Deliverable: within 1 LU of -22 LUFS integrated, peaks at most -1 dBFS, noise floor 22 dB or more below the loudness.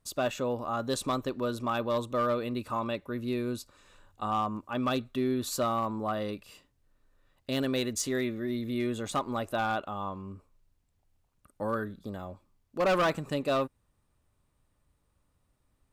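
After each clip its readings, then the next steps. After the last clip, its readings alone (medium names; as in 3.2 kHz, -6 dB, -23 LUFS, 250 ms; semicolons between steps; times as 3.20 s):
clipped samples 0.9%; clipping level -22.0 dBFS; loudness -31.5 LUFS; peak level -22.0 dBFS; loudness target -22.0 LUFS
-> clip repair -22 dBFS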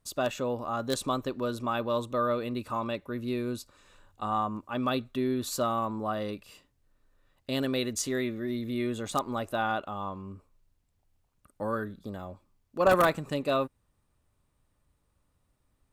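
clipped samples 0.0%; loudness -31.0 LUFS; peak level -13.0 dBFS; loudness target -22.0 LUFS
-> trim +9 dB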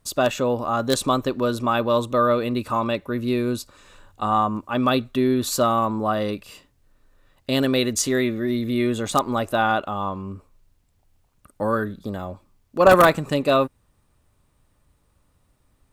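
loudness -22.0 LUFS; peak level -4.0 dBFS; noise floor -65 dBFS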